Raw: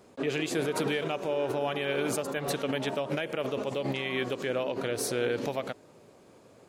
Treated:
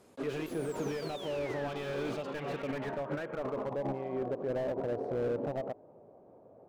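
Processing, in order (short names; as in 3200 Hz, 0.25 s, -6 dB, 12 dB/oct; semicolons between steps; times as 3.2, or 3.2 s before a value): painted sound fall, 0.46–1.69, 1500–12000 Hz -41 dBFS; low-pass sweep 12000 Hz -> 710 Hz, 0.58–4.08; slew limiter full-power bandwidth 27 Hz; gain -4.5 dB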